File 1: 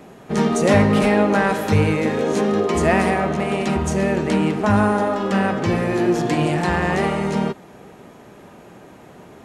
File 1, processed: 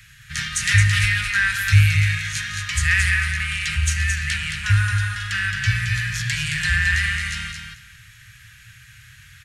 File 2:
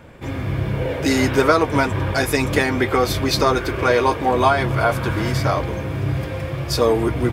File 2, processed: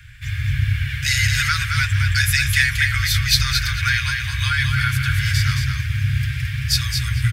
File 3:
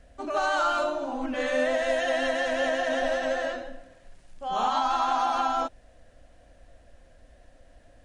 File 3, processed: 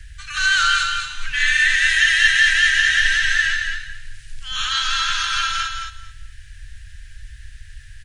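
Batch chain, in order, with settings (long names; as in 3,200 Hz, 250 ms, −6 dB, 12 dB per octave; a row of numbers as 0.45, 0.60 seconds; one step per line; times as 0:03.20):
Chebyshev band-stop filter 120–1,600 Hz, order 4
repeating echo 220 ms, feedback 18%, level −5.5 dB
normalise the peak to −3 dBFS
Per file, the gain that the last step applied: +6.5, +6.0, +16.5 decibels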